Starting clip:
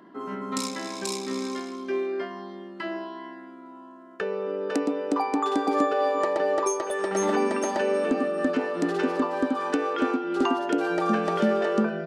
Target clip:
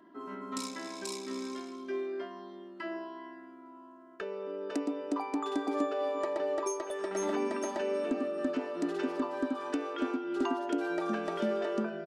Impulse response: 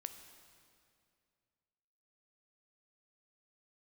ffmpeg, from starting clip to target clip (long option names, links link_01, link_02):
-af "aecho=1:1:3.1:0.45,volume=-9dB"